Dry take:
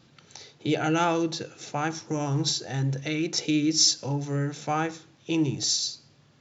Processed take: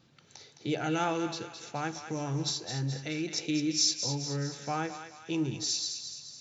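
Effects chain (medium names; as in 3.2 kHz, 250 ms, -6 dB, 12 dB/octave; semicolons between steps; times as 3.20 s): thinning echo 213 ms, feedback 55%, high-pass 950 Hz, level -7.5 dB; trim -6 dB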